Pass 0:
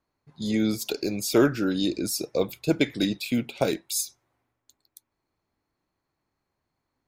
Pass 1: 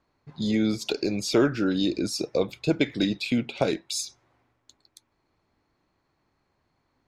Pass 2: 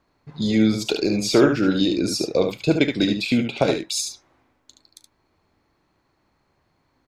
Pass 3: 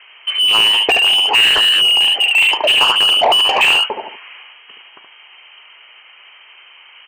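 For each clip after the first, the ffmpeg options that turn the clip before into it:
-af "lowpass=5500,acompressor=threshold=0.00794:ratio=1.5,volume=2.51"
-af "aecho=1:1:38|73:0.141|0.473,volume=1.68"
-filter_complex "[0:a]lowpass=f=2700:t=q:w=0.5098,lowpass=f=2700:t=q:w=0.6013,lowpass=f=2700:t=q:w=0.9,lowpass=f=2700:t=q:w=2.563,afreqshift=-3200,asplit=2[s0][s1];[s1]highpass=f=720:p=1,volume=44.7,asoftclip=type=tanh:threshold=0.708[s2];[s0][s2]amix=inputs=2:normalize=0,lowpass=f=2100:p=1,volume=0.501,equalizer=f=400:t=o:w=0.67:g=8,equalizer=f=1000:t=o:w=0.67:g=4,equalizer=f=2500:t=o:w=0.67:g=4,volume=0.841"

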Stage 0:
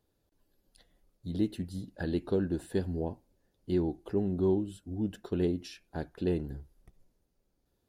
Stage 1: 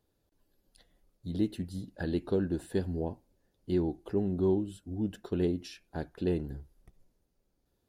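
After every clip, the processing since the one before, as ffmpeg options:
-af anull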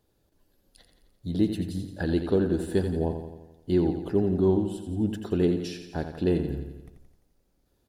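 -af "aecho=1:1:86|172|258|344|430|516|602:0.376|0.218|0.126|0.0733|0.0425|0.0247|0.0143,volume=1.88"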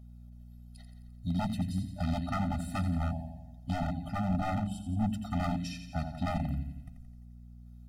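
-af "aeval=exprs='val(0)+0.00398*(sin(2*PI*60*n/s)+sin(2*PI*2*60*n/s)/2+sin(2*PI*3*60*n/s)/3+sin(2*PI*4*60*n/s)/4+sin(2*PI*5*60*n/s)/5)':c=same,aeval=exprs='0.075*(abs(mod(val(0)/0.075+3,4)-2)-1)':c=same,afftfilt=real='re*eq(mod(floor(b*sr/1024/300),2),0)':imag='im*eq(mod(floor(b*sr/1024/300),2),0)':win_size=1024:overlap=0.75"

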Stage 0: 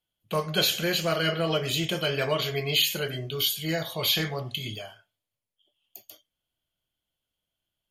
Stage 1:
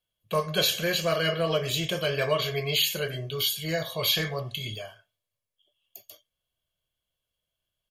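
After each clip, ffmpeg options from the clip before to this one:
-af "aecho=1:1:1.8:0.46,volume=0.891"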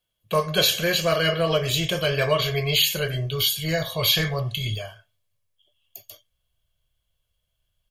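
-af "asubboost=boost=4:cutoff=120,volume=1.68"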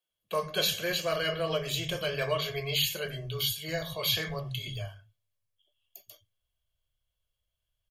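-filter_complex "[0:a]acrossover=split=180[s0][s1];[s0]adelay=100[s2];[s2][s1]amix=inputs=2:normalize=0,volume=0.398"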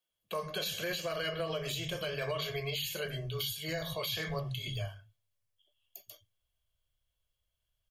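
-af "alimiter=level_in=1.26:limit=0.0631:level=0:latency=1:release=128,volume=0.794"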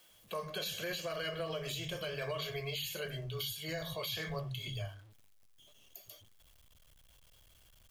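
-af "aeval=exprs='val(0)+0.5*0.00224*sgn(val(0))':c=same,volume=0.668"

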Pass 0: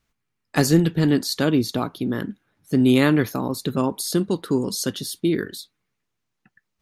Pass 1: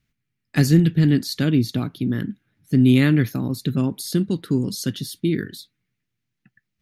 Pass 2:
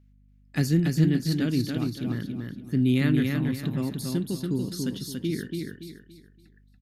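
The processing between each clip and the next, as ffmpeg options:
-af "equalizer=f=125:t=o:w=1:g=8,equalizer=f=250:t=o:w=1:g=3,equalizer=f=500:t=o:w=1:g=-5,equalizer=f=1000:t=o:w=1:g=-10,equalizer=f=2000:t=o:w=1:g=4,equalizer=f=8000:t=o:w=1:g=-4,volume=0.841"
-af "aecho=1:1:284|568|852|1136:0.631|0.208|0.0687|0.0227,aeval=exprs='val(0)+0.00355*(sin(2*PI*50*n/s)+sin(2*PI*2*50*n/s)/2+sin(2*PI*3*50*n/s)/3+sin(2*PI*4*50*n/s)/4+sin(2*PI*5*50*n/s)/5)':c=same,volume=0.422"

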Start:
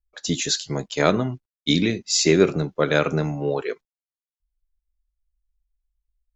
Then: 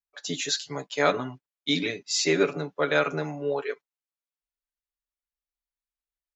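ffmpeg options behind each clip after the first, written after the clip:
-af "highpass=f=970:p=1,highshelf=f=2800:g=-10,aecho=1:1:7:0.95"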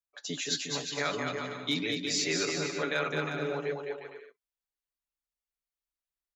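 -filter_complex "[0:a]acrossover=split=110|1400[s0][s1][s2];[s1]alimiter=limit=0.0708:level=0:latency=1:release=27[s3];[s0][s3][s2]amix=inputs=3:normalize=0,asoftclip=type=hard:threshold=0.168,aecho=1:1:210|357|459.9|531.9|582.4:0.631|0.398|0.251|0.158|0.1,volume=0.596"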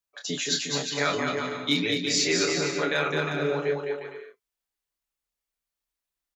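-filter_complex "[0:a]asplit=2[s0][s1];[s1]adelay=28,volume=0.501[s2];[s0][s2]amix=inputs=2:normalize=0,volume=1.68"

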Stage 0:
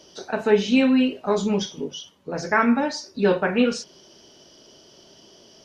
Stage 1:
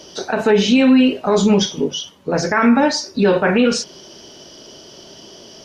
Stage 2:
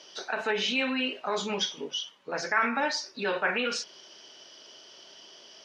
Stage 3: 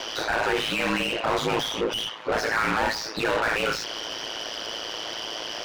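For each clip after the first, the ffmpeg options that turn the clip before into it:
-af "alimiter=level_in=5.62:limit=0.891:release=50:level=0:latency=1,volume=0.596"
-af "bandpass=f=2200:t=q:w=0.7:csg=0,volume=0.531"
-filter_complex "[0:a]asplit=2[s0][s1];[s1]highpass=f=720:p=1,volume=70.8,asoftclip=type=tanh:threshold=0.224[s2];[s0][s2]amix=inputs=2:normalize=0,lowpass=f=1600:p=1,volume=0.501,aeval=exprs='val(0)*sin(2*PI*55*n/s)':c=same"

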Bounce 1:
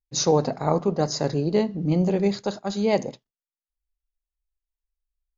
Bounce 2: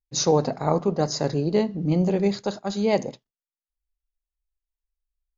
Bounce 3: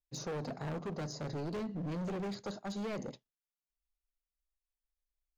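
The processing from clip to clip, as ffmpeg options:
-af anull
-filter_complex "[0:a]acrossover=split=490|1100[s0][s1][s2];[s0]acompressor=threshold=0.0708:ratio=4[s3];[s1]acompressor=threshold=0.02:ratio=4[s4];[s2]acompressor=threshold=0.01:ratio=4[s5];[s3][s4][s5]amix=inputs=3:normalize=0,asoftclip=type=hard:threshold=0.0376,volume=0.447"

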